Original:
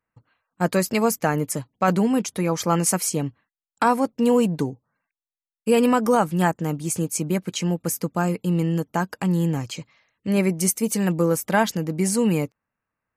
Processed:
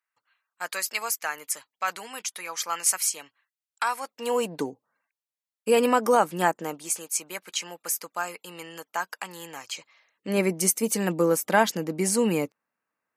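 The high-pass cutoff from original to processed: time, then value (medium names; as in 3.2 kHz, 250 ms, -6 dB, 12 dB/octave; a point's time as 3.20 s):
3.97 s 1.4 kHz
4.60 s 360 Hz
6.56 s 360 Hz
7.03 s 970 Hz
9.68 s 970 Hz
10.39 s 260 Hz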